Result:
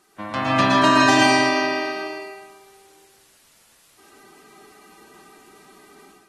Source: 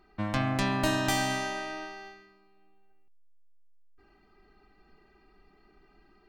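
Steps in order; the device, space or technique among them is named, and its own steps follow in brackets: filmed off a television (band-pass 230–6600 Hz; peaking EQ 1.1 kHz +6 dB 0.32 oct; reverberation RT60 0.80 s, pre-delay 111 ms, DRR -2.5 dB; white noise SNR 32 dB; level rider gain up to 8 dB; AAC 32 kbps 44.1 kHz)

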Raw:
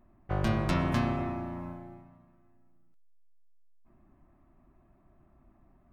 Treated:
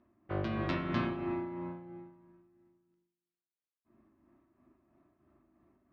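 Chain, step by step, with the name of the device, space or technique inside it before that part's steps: combo amplifier with spring reverb and tremolo (spring tank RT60 1 s, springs 40 ms, chirp 50 ms, DRR 4.5 dB; tremolo 3 Hz, depth 47%; cabinet simulation 110–4500 Hz, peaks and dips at 160 Hz -9 dB, 320 Hz +6 dB, 770 Hz -6 dB); trim -2.5 dB

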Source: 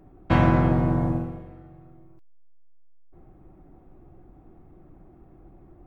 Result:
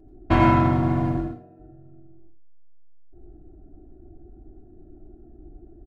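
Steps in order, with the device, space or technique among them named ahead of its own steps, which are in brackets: local Wiener filter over 41 samples; 1.17–1.60 s: Bessel high-pass 280 Hz, order 2; microphone above a desk (comb 2.9 ms, depth 67%; reverberation RT60 0.35 s, pre-delay 81 ms, DRR 2 dB)

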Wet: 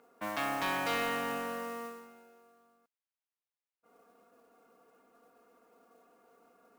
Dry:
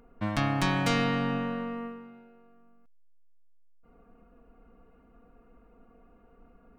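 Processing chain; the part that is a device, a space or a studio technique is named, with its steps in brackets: carbon microphone (band-pass 430–3300 Hz; saturation -26 dBFS, distortion -14 dB; modulation noise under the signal 15 dB)

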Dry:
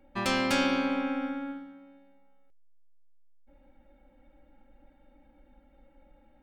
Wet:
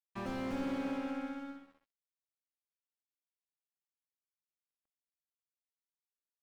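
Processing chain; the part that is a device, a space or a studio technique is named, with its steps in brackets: early transistor amplifier (crossover distortion -47.5 dBFS; slew-rate limiter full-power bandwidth 20 Hz); trim -6 dB

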